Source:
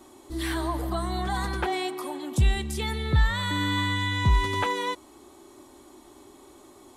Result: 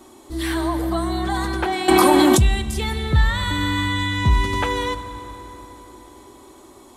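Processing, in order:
on a send at −10 dB: convolution reverb RT60 4.2 s, pre-delay 4 ms
0:01.88–0:02.42: on the sum: envelope flattener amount 100%
level +4.5 dB

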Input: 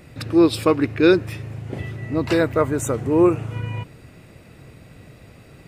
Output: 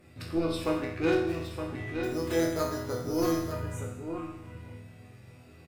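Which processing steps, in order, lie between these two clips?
spectral magnitudes quantised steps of 15 dB
in parallel at −0.5 dB: downward compressor, threshold −23 dBFS, peak gain reduction 12.5 dB
on the sum: harmonic generator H 2 −13 dB, 6 −25 dB, 8 −28 dB, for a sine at −1.5 dBFS
on a send: single-tap delay 917 ms −7.5 dB
0:02.03–0:03.52: on the sum: bad sample-rate conversion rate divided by 8×, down filtered, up hold
resonators tuned to a chord E2 major, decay 0.81 s
0:00.64–0:01.51: windowed peak hold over 3 samples
level +3.5 dB

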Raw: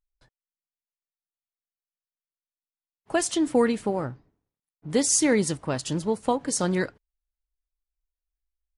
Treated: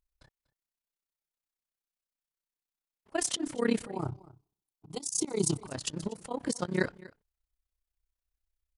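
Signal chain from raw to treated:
0:03.92–0:05.66: phaser with its sweep stopped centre 350 Hz, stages 8
amplitude modulation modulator 32 Hz, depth 85%
volume swells 191 ms
on a send: single-tap delay 242 ms −20.5 dB
on the sum: level +4 dB

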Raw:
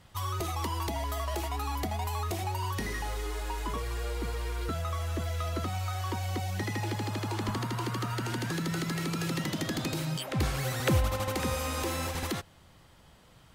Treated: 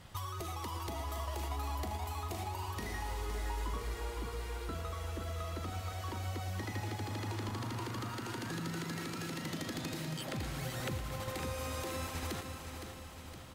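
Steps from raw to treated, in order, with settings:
downward compressor 6 to 1, threshold −41 dBFS, peak gain reduction 18.5 dB
repeating echo 514 ms, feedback 55%, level −8 dB
feedback echo at a low word length 113 ms, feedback 80%, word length 12 bits, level −13 dB
level +2.5 dB

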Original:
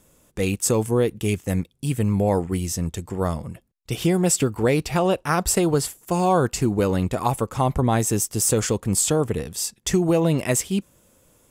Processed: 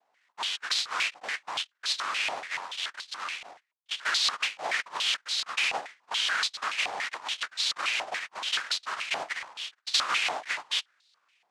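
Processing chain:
samples in bit-reversed order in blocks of 32 samples
cochlear-implant simulation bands 1
band-pass on a step sequencer 7 Hz 750–4,000 Hz
level +2 dB

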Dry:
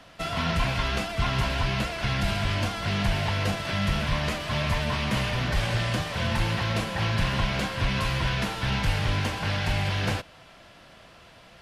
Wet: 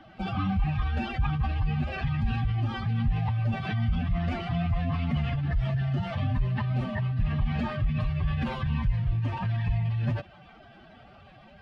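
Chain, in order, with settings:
expanding power law on the bin magnitudes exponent 2
phase-vocoder pitch shift with formants kept +2.5 semitones

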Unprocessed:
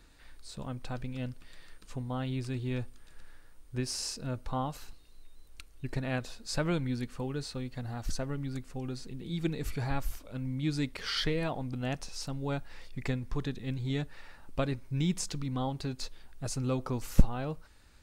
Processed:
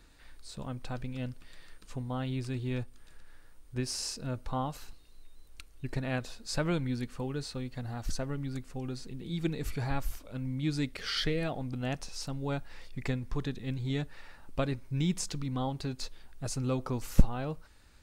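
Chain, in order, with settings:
0:02.83–0:03.76: downward compressor 4 to 1, threshold −43 dBFS, peak gain reduction 5 dB
0:10.85–0:11.61: parametric band 980 Hz −11.5 dB 0.23 octaves

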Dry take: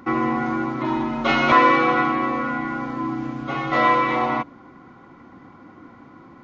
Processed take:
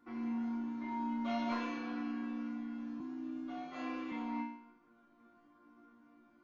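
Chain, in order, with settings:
resonators tuned to a chord A#3 major, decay 0.66 s
0:03.00–0:04.12: frequency shifter +25 Hz
level +2 dB

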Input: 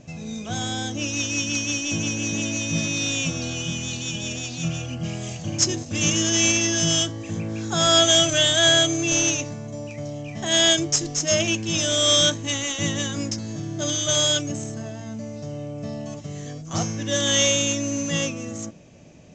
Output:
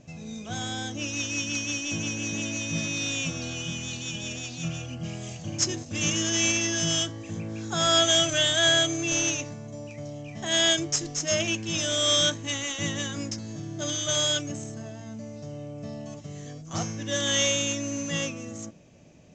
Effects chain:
dynamic equaliser 1,700 Hz, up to +3 dB, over −37 dBFS, Q 0.85
level −5.5 dB

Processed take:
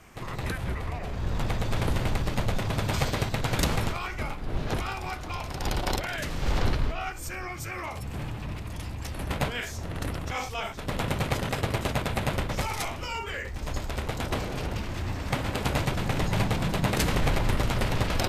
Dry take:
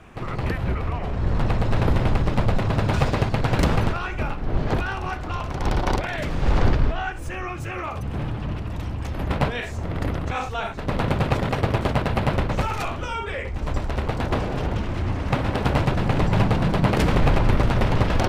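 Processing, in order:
first-order pre-emphasis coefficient 0.8
formants moved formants −2 semitones
level +7 dB

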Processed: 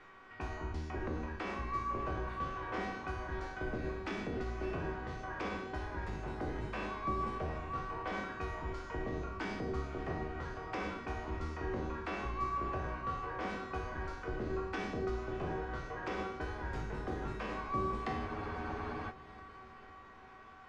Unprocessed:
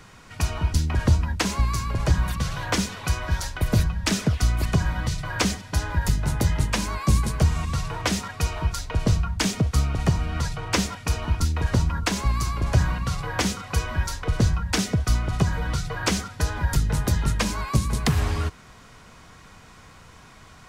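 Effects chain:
peak hold with a decay on every bin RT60 0.76 s
low-pass filter 1,700 Hz 12 dB per octave
low shelf with overshoot 220 Hz −7.5 dB, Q 1.5
hum removal 48.28 Hz, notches 33
brickwall limiter −18 dBFS, peak gain reduction 7 dB
tuned comb filter 380 Hz, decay 0.75 s, mix 90%
on a send: feedback delay with all-pass diffusion 602 ms, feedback 52%, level −13 dB
on the sum: frozen spectrum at 0:18.29, 0.80 s
one half of a high-frequency compander encoder only
level +6.5 dB

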